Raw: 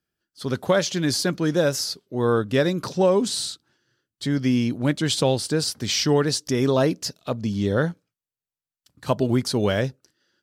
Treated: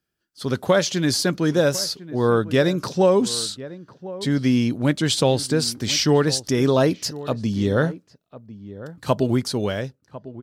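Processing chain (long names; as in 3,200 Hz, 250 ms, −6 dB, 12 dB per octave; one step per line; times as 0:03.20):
fade-out on the ending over 1.28 s
slap from a distant wall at 180 metres, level −16 dB
level +2 dB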